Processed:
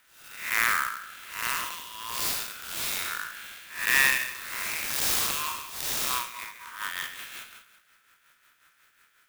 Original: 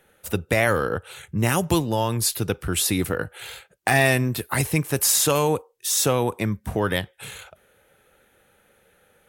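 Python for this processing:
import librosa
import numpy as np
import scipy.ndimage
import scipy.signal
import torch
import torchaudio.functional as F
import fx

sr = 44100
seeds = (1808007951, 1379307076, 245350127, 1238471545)

p1 = fx.spec_blur(x, sr, span_ms=233.0)
p2 = fx.brickwall_highpass(p1, sr, low_hz=930.0)
p3 = p2 + fx.echo_feedback(p2, sr, ms=135, feedback_pct=36, wet_db=-10.0, dry=0)
p4 = fx.rotary_switch(p3, sr, hz=1.2, then_hz=5.5, switch_at_s=5.75)
p5 = fx.clock_jitter(p4, sr, seeds[0], jitter_ms=0.036)
y = p5 * 10.0 ** (5.0 / 20.0)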